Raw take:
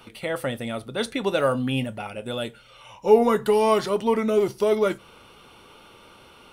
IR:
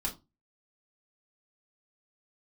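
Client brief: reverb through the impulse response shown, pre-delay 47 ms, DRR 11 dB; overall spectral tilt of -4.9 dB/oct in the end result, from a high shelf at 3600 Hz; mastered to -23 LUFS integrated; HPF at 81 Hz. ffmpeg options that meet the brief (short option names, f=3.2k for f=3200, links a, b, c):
-filter_complex "[0:a]highpass=81,highshelf=f=3.6k:g=-6.5,asplit=2[a][b];[1:a]atrim=start_sample=2205,adelay=47[c];[b][c]afir=irnorm=-1:irlink=0,volume=-14dB[d];[a][d]amix=inputs=2:normalize=0,volume=0.5dB"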